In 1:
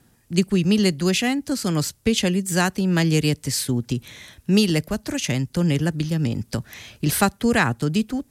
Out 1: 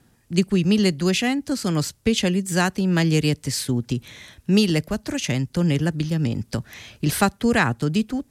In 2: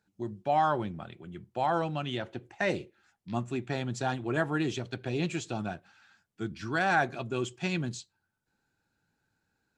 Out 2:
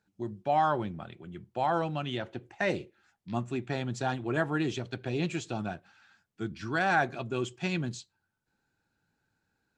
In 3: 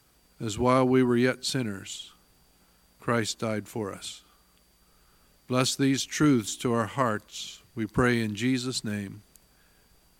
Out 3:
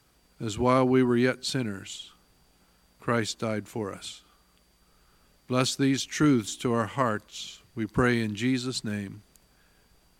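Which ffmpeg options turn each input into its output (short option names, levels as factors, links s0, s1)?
-af "highshelf=f=9500:g=-6.5"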